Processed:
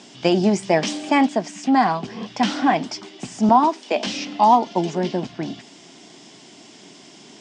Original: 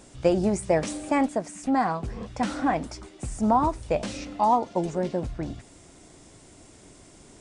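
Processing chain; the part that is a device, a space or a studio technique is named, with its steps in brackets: television speaker (cabinet simulation 180–6500 Hz, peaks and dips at 310 Hz -3 dB, 520 Hz -10 dB, 1.3 kHz -6 dB, 3.1 kHz +8 dB, 5.1 kHz +5 dB); 3.49–4.07 s: steep high-pass 220 Hz 48 dB/octave; trim +8.5 dB

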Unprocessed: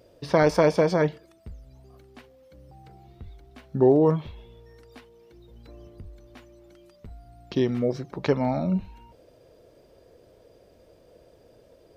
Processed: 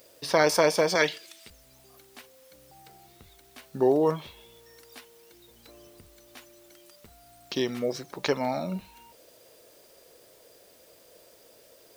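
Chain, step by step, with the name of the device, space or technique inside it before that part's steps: turntable without a phono preamp (RIAA curve recording; white noise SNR 30 dB); 0.95–1.50 s: frequency weighting D

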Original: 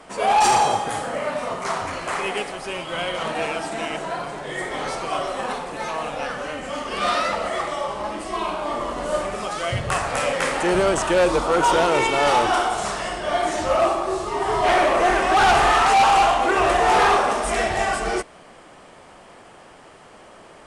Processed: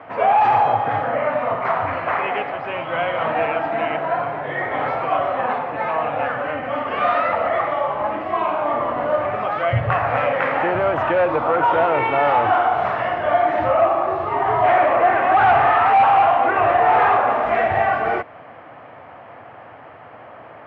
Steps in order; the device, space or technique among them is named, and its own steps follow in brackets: bass amplifier (compression 3:1, threshold -21 dBFS, peak gain reduction 5.5 dB; cabinet simulation 84–2300 Hz, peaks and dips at 110 Hz +7 dB, 190 Hz -10 dB, 380 Hz -8 dB, 710 Hz +4 dB); trim +5.5 dB

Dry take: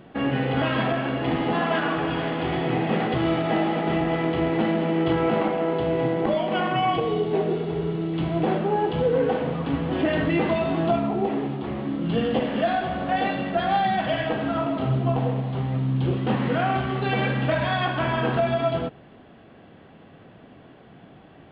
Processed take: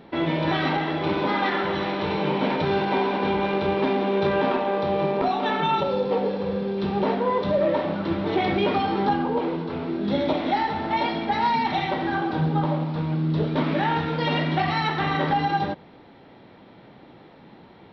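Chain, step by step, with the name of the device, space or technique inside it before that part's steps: nightcore (tape speed +20%)

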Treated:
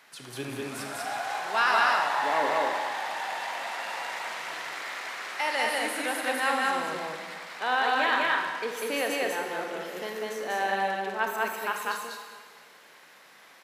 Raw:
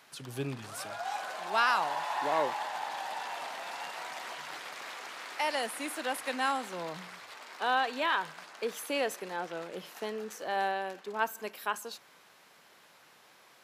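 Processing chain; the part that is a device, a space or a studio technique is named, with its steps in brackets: stadium PA (high-pass 160 Hz 12 dB/octave; peaking EQ 1.9 kHz +5 dB 0.68 oct; loudspeakers at several distances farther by 67 m -1 dB, 81 m -12 dB; reverberation RT60 1.7 s, pre-delay 25 ms, DRR 4 dB)

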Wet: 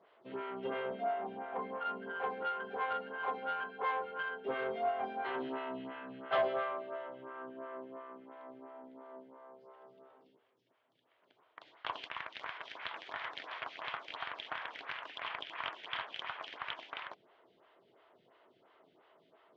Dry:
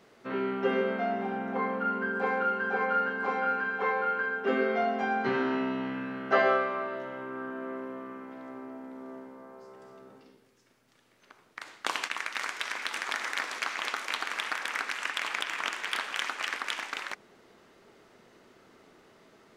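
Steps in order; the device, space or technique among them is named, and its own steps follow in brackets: vibe pedal into a guitar amplifier (lamp-driven phase shifter 2.9 Hz; valve stage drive 22 dB, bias 0.35; cabinet simulation 100–3900 Hz, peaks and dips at 220 Hz -8 dB, 660 Hz +7 dB, 1 kHz +6 dB, 3.2 kHz +8 dB); trim -6.5 dB

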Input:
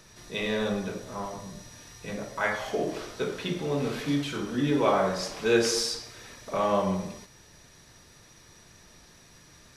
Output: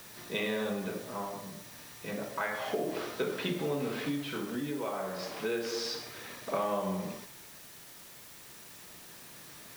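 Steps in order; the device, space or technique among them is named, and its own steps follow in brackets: medium wave at night (band-pass 150–4000 Hz; compression, threshold -31 dBFS, peak gain reduction 13 dB; tremolo 0.31 Hz, depth 40%; whistle 10 kHz -68 dBFS; white noise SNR 15 dB); trim +2.5 dB

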